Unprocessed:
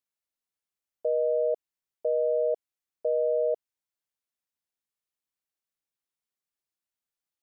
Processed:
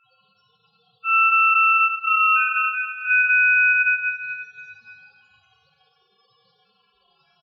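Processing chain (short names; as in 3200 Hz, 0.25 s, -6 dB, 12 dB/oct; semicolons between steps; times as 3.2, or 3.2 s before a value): vocoder on a gliding note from G#3, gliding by +8 st; transient shaper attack -12 dB, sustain +7 dB; crackle 100/s -63 dBFS; HPF 410 Hz 6 dB/oct; comb 3.2 ms, depth 82%; upward compressor, threshold -45 dBFS; loudest bins only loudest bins 1; plate-style reverb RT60 2.1 s, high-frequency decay 0.65×, DRR -3.5 dB; ring modulator 2000 Hz; maximiser +34 dB; gain -9 dB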